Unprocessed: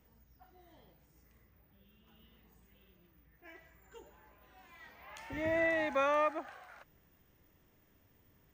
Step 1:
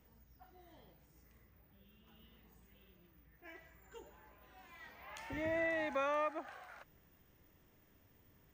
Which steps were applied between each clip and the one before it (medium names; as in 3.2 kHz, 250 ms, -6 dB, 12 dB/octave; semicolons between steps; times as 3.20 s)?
compression 1.5:1, threshold -42 dBFS, peak gain reduction 5.5 dB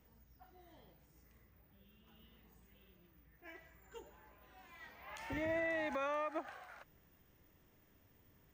peak limiter -36.5 dBFS, peak gain reduction 9.5 dB; upward expansion 1.5:1, over -55 dBFS; trim +6 dB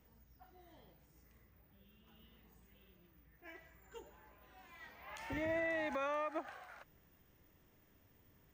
no audible change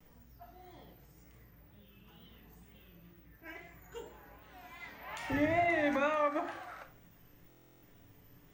wow and flutter 93 cents; on a send at -4 dB: reverberation RT60 0.50 s, pre-delay 7 ms; on the sum: buffer glitch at 7.48 s, samples 1024, times 14; trim +5.5 dB